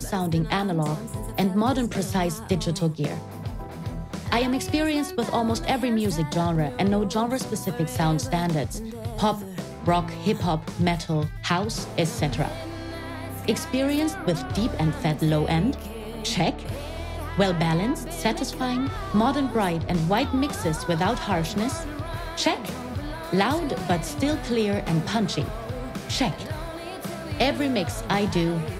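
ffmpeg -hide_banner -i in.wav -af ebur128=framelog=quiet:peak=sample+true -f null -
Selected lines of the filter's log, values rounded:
Integrated loudness:
  I:         -25.7 LUFS
  Threshold: -35.7 LUFS
Loudness range:
  LRA:         2.3 LU
  Threshold: -45.7 LUFS
  LRA low:   -26.8 LUFS
  LRA high:  -24.5 LUFS
Sample peak:
  Peak:       -8.3 dBFS
True peak:
  Peak:       -8.2 dBFS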